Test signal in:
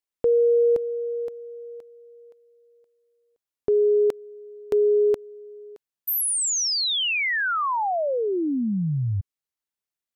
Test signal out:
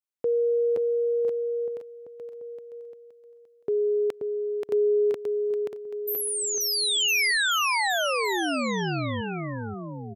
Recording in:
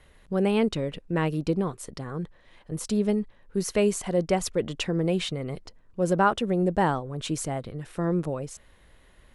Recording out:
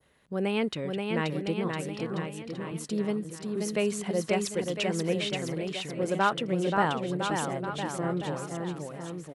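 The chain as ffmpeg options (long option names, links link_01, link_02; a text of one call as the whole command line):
ffmpeg -i in.wav -filter_complex "[0:a]highpass=110,adynamicequalizer=threshold=0.0112:dfrequency=2400:dqfactor=0.73:tfrequency=2400:tqfactor=0.73:attack=5:release=100:ratio=0.375:range=3:mode=boostabove:tftype=bell,asplit=2[link_01][link_02];[link_02]aecho=0:1:530|1007|1436|1823|2170:0.631|0.398|0.251|0.158|0.1[link_03];[link_01][link_03]amix=inputs=2:normalize=0,volume=-5.5dB" out.wav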